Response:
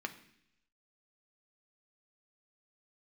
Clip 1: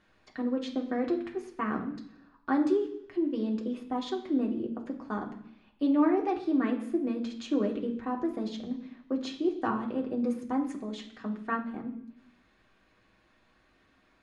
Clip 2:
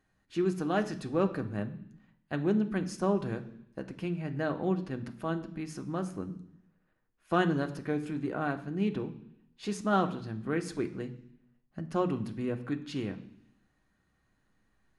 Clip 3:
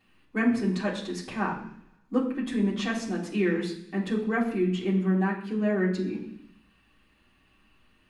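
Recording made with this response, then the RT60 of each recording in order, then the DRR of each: 2; 0.70, 0.70, 0.70 seconds; 0.0, 5.5, −5.5 decibels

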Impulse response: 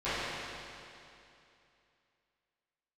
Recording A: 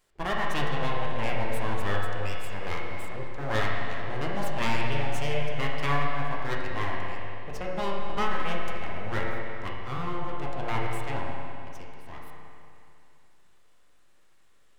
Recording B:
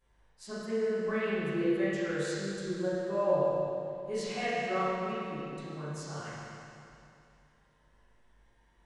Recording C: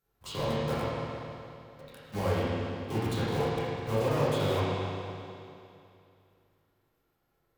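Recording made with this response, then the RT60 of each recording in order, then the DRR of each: B; 2.7, 2.7, 2.7 seconds; −3.5, −17.5, −11.5 decibels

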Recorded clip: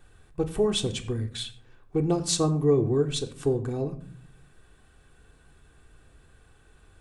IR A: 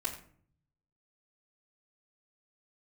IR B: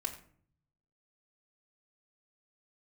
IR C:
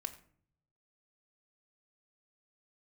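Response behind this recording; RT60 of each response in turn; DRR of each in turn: C; 0.50, 0.50, 0.55 seconds; −10.5, −2.0, 3.0 decibels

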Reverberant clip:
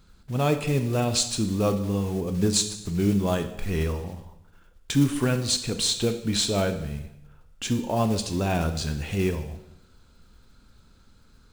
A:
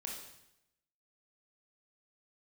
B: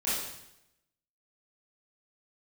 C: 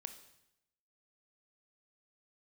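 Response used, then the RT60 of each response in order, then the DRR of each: C; 0.85, 0.85, 0.85 seconds; −1.5, −11.5, 8.0 decibels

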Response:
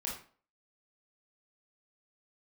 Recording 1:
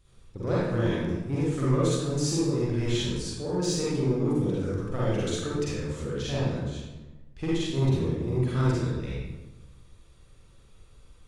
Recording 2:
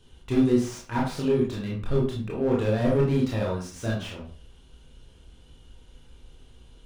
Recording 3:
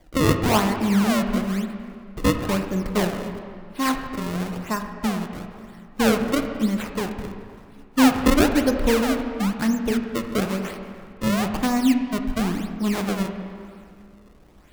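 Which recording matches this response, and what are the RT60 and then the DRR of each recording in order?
2; 1.1, 0.45, 2.2 seconds; −8.0, −4.0, 5.0 decibels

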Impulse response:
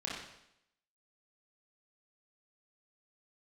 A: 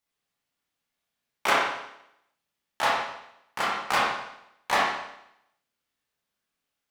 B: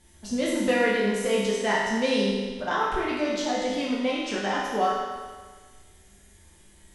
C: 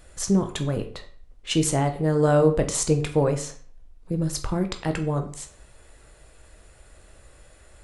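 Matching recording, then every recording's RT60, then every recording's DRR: A; 0.80, 1.5, 0.50 seconds; −5.5, −6.0, 5.5 decibels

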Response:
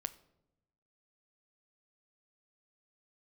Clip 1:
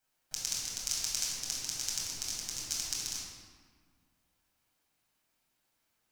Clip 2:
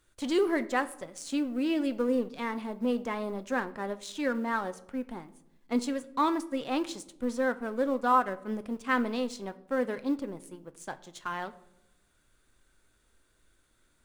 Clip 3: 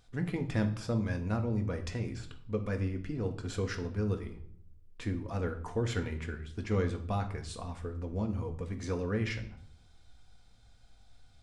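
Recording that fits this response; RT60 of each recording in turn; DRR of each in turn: 2; 1.7, 0.90, 0.65 seconds; −6.5, 11.5, 4.0 decibels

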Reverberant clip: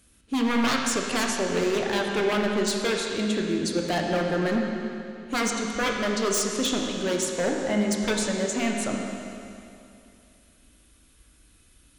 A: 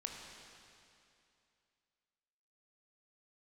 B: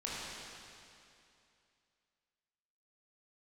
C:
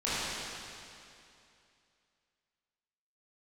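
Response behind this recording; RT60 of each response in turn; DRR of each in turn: A; 2.6, 2.6, 2.6 seconds; 0.5, −7.5, −12.5 decibels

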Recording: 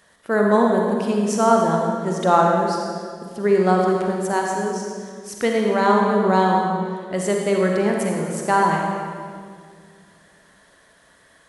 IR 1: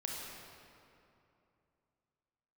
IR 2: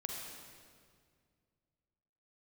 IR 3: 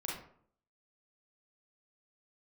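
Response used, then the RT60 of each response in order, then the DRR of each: 2; 2.8, 2.0, 0.60 seconds; −2.0, 0.0, −4.5 decibels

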